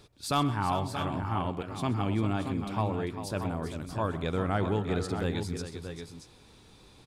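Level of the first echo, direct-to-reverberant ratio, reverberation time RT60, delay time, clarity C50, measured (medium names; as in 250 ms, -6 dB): -16.5 dB, no reverb, no reverb, 128 ms, no reverb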